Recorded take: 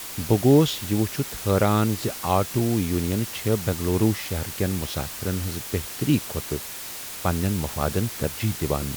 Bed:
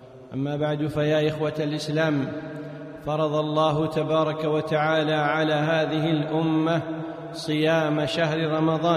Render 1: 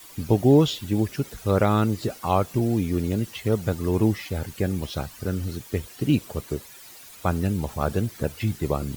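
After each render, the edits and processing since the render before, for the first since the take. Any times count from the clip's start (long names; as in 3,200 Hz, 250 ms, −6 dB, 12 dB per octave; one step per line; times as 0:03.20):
broadband denoise 13 dB, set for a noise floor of −36 dBFS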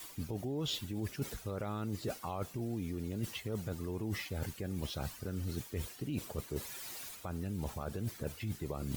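brickwall limiter −18 dBFS, peak gain reduction 11.5 dB
reversed playback
downward compressor 12 to 1, threshold −34 dBFS, peak gain reduction 12.5 dB
reversed playback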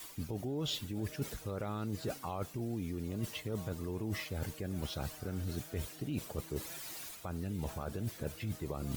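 mix in bed −34 dB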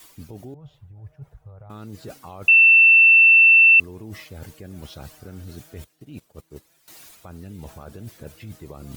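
0:00.54–0:01.70: drawn EQ curve 140 Hz 0 dB, 240 Hz −26 dB, 740 Hz −5 dB, 4,500 Hz −29 dB
0:02.48–0:03.80: beep over 2,680 Hz −8.5 dBFS
0:05.84–0:06.88: expander for the loud parts 2.5 to 1, over −45 dBFS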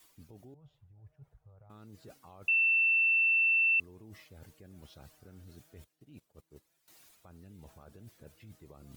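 level −14.5 dB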